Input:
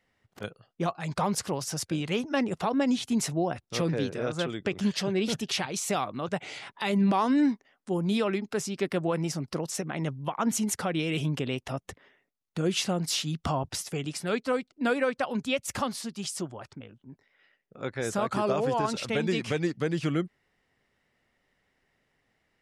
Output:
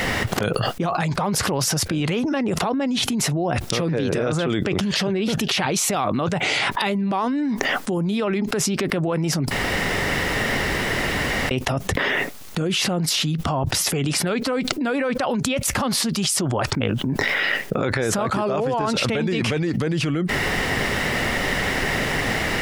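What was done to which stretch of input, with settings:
9.51–11.51 s: room tone
whole clip: dynamic bell 7.5 kHz, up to -6 dB, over -48 dBFS, Q 0.73; loudness maximiser +28 dB; level flattener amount 100%; trim -17.5 dB

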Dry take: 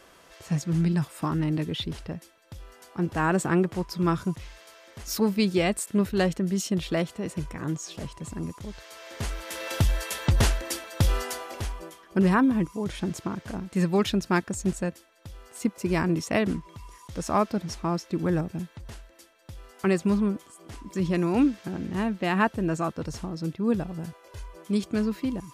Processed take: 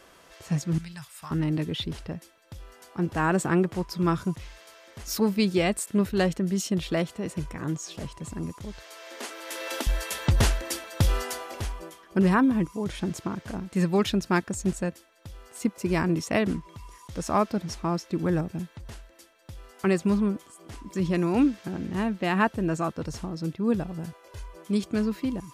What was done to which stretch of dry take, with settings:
0.78–1.31 s: amplifier tone stack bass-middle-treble 10-0-10
8.87–9.87 s: steep high-pass 240 Hz 72 dB/octave

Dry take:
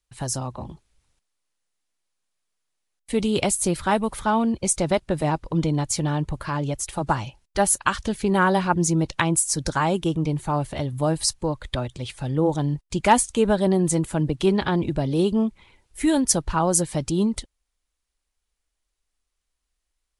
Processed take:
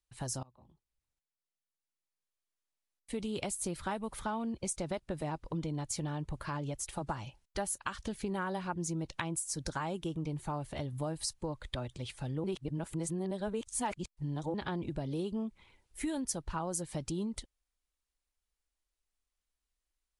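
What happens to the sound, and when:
0.43–3.94 s: fade in, from -24 dB
12.44–14.54 s: reverse
whole clip: compression 4:1, threshold -25 dBFS; trim -8.5 dB

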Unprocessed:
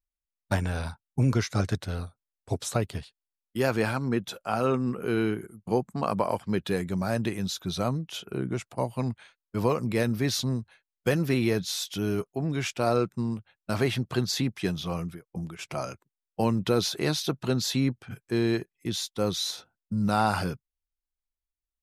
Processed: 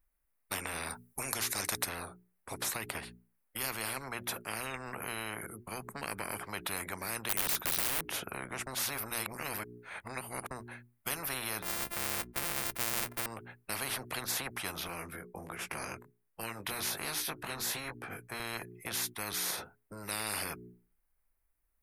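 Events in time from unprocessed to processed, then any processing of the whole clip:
0.90–1.89 s: tone controls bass +2 dB, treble +11 dB
7.29–8.04 s: integer overflow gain 27 dB
8.67–10.51 s: reverse
11.62–13.26 s: sorted samples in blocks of 128 samples
14.87–18.40 s: chorus 1.3 Hz, delay 17.5 ms, depth 4.3 ms
whole clip: high-order bell 4.7 kHz -13.5 dB; hum notches 60/120/180/240/300/360/420 Hz; spectrum-flattening compressor 10:1

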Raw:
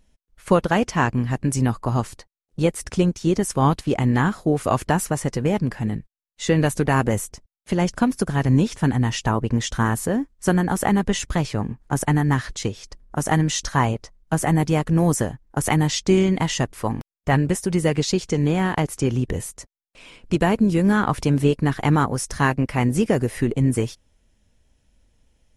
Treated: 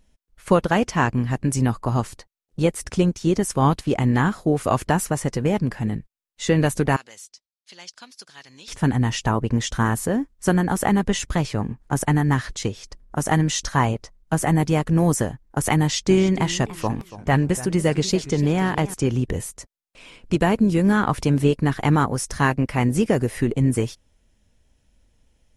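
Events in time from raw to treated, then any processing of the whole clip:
6.96–8.68 s: band-pass filter 4.5 kHz, Q 2.3
15.79–18.94 s: modulated delay 290 ms, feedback 31%, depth 181 cents, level -16 dB

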